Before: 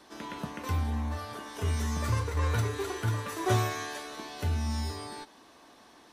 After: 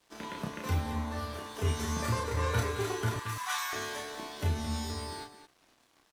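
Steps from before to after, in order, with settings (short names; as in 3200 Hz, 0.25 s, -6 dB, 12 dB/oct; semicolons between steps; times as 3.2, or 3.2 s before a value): 3.16–3.73 steep high-pass 850 Hz 48 dB/oct; crossover distortion -53 dBFS; loudspeakers at several distances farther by 11 m -4 dB, 75 m -10 dB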